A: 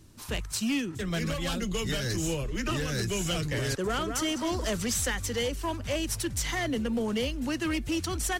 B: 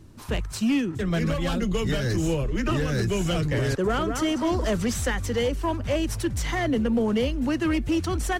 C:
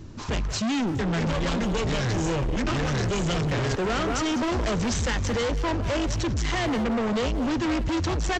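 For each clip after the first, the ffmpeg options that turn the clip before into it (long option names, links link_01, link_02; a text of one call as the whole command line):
ffmpeg -i in.wav -af "highshelf=frequency=2400:gain=-11,volume=6.5dB" out.wav
ffmpeg -i in.wav -filter_complex "[0:a]aresample=16000,volume=31dB,asoftclip=hard,volume=-31dB,aresample=44100,asplit=2[link_01][link_02];[link_02]adelay=180,highpass=300,lowpass=3400,asoftclip=type=hard:threshold=-36dB,volume=-8dB[link_03];[link_01][link_03]amix=inputs=2:normalize=0,volume=7dB" out.wav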